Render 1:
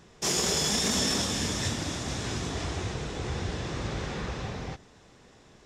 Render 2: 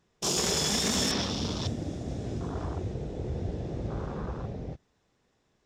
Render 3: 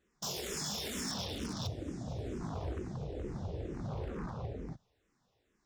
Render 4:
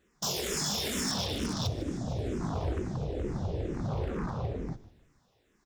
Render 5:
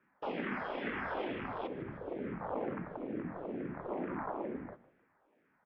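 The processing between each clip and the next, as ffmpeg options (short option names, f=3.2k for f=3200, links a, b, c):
-af "afwtdn=0.02,equalizer=f=10k:t=o:w=0.34:g=-2.5"
-filter_complex "[0:a]alimiter=limit=-22.5dB:level=0:latency=1:release=389,aeval=exprs='0.0398*(abs(mod(val(0)/0.0398+3,4)-2)-1)':c=same,asplit=2[a][b];[b]afreqshift=-2.2[c];[a][c]amix=inputs=2:normalize=1,volume=-1.5dB"
-filter_complex "[0:a]asplit=4[a][b][c][d];[b]adelay=153,afreqshift=-63,volume=-18dB[e];[c]adelay=306,afreqshift=-126,volume=-25.5dB[f];[d]adelay=459,afreqshift=-189,volume=-33.1dB[g];[a][e][f][g]amix=inputs=4:normalize=0,volume=6.5dB"
-af "highpass=f=460:t=q:w=0.5412,highpass=f=460:t=q:w=1.307,lowpass=f=2.4k:t=q:w=0.5176,lowpass=f=2.4k:t=q:w=0.7071,lowpass=f=2.4k:t=q:w=1.932,afreqshift=-190,volume=2.5dB"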